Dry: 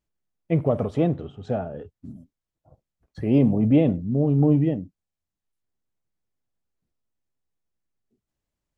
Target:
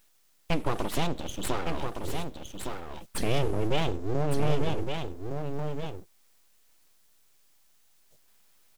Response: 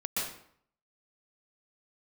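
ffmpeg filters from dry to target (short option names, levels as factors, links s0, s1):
-filter_complex "[0:a]aexciter=amount=5.8:drive=8.1:freq=2500,acompressor=threshold=0.0158:ratio=2.5,aeval=exprs='abs(val(0))':c=same,asplit=2[s0][s1];[s1]aecho=0:1:1162:0.501[s2];[s0][s2]amix=inputs=2:normalize=0,volume=2.51"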